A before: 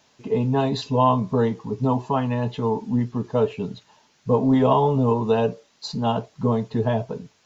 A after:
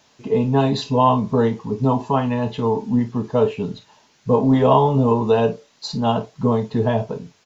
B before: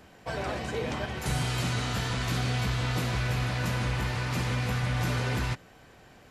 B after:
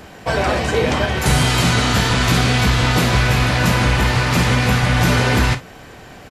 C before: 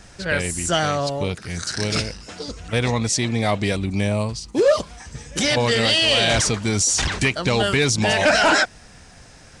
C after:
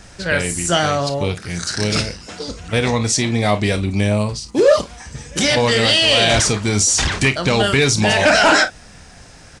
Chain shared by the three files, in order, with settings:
early reflections 29 ms -11.5 dB, 52 ms -15 dB; peak normalisation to -3 dBFS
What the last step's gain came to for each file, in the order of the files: +3.0 dB, +14.5 dB, +3.5 dB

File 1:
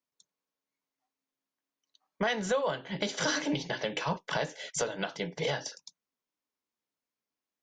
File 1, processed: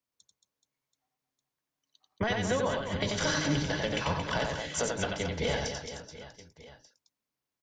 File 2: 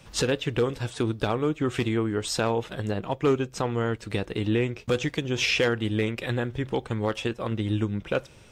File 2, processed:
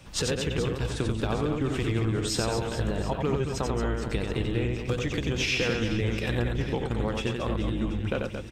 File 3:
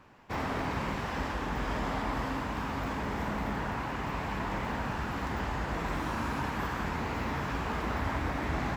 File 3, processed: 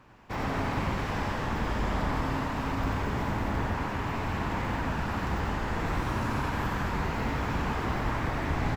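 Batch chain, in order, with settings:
octave divider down 1 oct, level 0 dB; compression, threshold -25 dBFS; reverse bouncing-ball echo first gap 90 ms, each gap 1.5×, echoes 5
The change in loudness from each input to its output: +1.5 LU, -1.5 LU, +3.0 LU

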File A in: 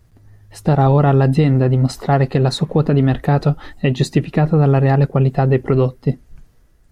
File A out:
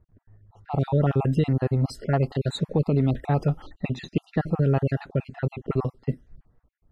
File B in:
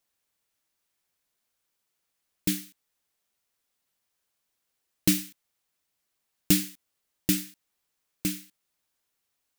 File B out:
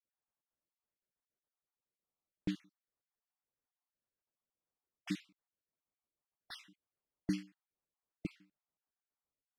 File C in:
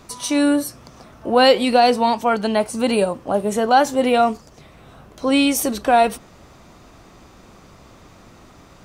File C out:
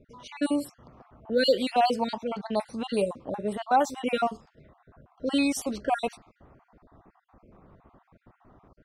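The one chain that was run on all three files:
random holes in the spectrogram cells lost 40%; level-controlled noise filter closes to 1.1 kHz, open at -14.5 dBFS; trim -7.5 dB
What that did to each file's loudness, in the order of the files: -9.5 LU, -16.0 LU, -10.0 LU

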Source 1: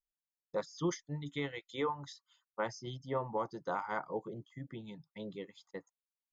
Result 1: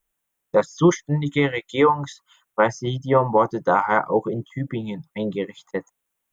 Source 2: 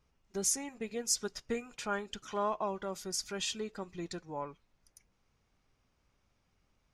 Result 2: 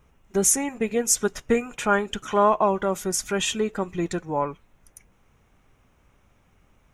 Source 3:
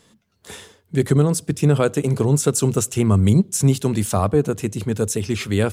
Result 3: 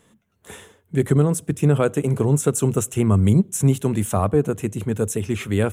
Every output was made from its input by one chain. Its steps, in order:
peaking EQ 4.7 kHz -15 dB 0.58 oct; peak normalisation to -6 dBFS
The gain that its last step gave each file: +18.0 dB, +14.5 dB, -1.0 dB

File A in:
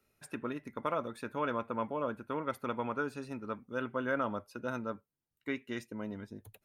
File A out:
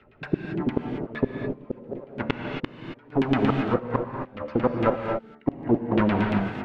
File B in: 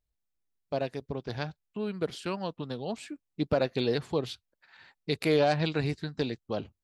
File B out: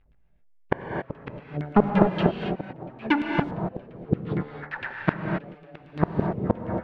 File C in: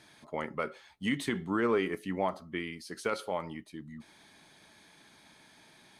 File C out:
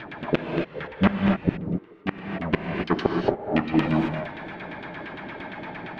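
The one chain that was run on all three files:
square wave that keeps the level; low-pass 4 kHz 12 dB/octave; de-hum 74.42 Hz, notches 30; compression 3:1, threshold -31 dBFS; LFO low-pass saw down 8.7 Hz 270–3100 Hz; inverted gate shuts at -23 dBFS, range -38 dB; gated-style reverb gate 300 ms rising, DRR 2 dB; normalise loudness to -27 LUFS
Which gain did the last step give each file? +13.0 dB, +16.5 dB, +15.5 dB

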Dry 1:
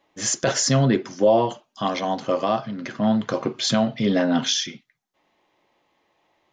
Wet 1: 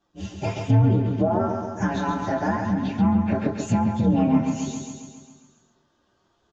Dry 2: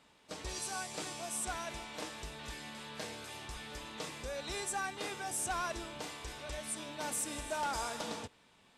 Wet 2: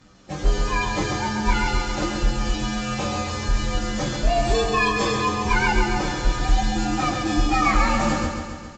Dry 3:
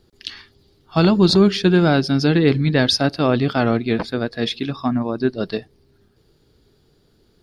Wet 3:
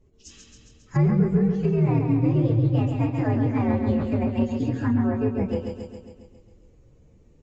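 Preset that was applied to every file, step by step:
frequency axis rescaled in octaves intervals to 126%; compression 2.5:1, threshold -26 dBFS; bass shelf 320 Hz +11.5 dB; on a send: feedback delay 136 ms, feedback 60%, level -6 dB; on the sum: level rider gain up to 4 dB; resampled via 16 kHz; doubling 26 ms -9.5 dB; low-pass that closes with the level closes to 2.2 kHz, closed at -12.5 dBFS; normalise loudness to -23 LUFS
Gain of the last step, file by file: -4.0 dB, +13.0 dB, -7.0 dB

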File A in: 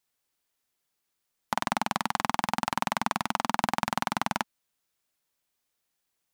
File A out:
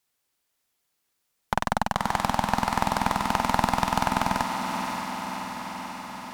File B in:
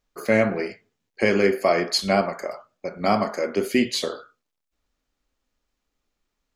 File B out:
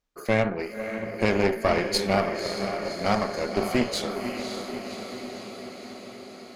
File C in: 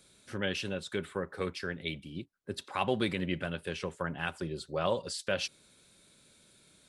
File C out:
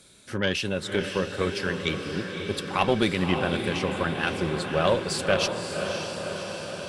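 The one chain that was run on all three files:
echo that smears into a reverb 561 ms, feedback 70%, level -6.5 dB; Chebyshev shaper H 4 -13 dB, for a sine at -5 dBFS; normalise loudness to -27 LUFS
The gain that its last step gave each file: +3.5 dB, -4.5 dB, +7.5 dB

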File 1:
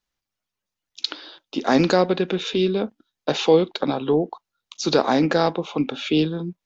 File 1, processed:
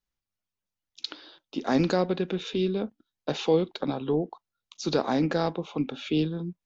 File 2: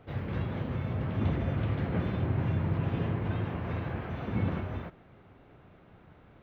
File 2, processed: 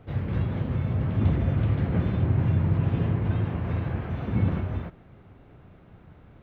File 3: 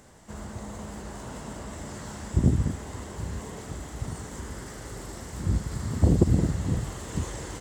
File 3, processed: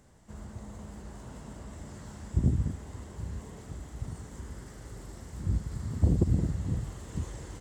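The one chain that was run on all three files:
bass shelf 220 Hz +8 dB; peak normalisation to -12 dBFS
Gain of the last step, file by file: -8.5 dB, +0.5 dB, -10.0 dB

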